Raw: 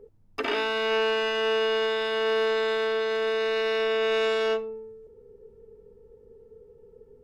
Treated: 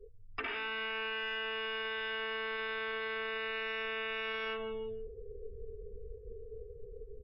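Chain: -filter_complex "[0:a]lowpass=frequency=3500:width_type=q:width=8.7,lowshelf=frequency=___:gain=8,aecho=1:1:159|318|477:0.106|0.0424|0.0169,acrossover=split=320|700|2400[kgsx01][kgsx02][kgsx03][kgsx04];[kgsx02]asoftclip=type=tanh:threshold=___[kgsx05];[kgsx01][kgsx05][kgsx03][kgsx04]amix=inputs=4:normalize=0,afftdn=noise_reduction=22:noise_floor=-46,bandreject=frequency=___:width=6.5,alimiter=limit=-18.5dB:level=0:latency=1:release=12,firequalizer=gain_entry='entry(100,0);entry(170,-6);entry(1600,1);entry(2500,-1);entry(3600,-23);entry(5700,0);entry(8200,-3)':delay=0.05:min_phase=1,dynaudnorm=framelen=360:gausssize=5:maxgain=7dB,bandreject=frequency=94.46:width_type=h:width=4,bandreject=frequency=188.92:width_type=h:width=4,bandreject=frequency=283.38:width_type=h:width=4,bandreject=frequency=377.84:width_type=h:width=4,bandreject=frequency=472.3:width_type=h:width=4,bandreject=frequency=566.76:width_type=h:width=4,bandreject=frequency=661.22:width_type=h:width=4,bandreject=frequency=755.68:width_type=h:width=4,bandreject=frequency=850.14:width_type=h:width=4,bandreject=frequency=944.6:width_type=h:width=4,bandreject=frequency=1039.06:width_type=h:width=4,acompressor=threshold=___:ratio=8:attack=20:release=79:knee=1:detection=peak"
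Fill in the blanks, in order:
96, -35dB, 570, -38dB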